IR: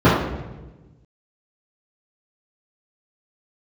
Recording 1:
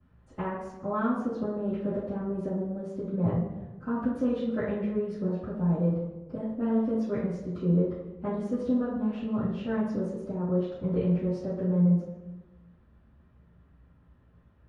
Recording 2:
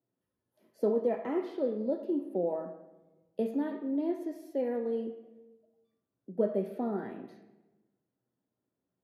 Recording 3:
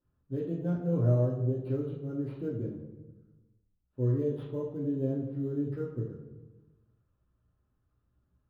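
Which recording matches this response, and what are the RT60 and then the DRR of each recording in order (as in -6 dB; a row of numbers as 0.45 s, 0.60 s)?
1; 1.2 s, 1.2 s, 1.2 s; -13.5 dB, 4.5 dB, -4.5 dB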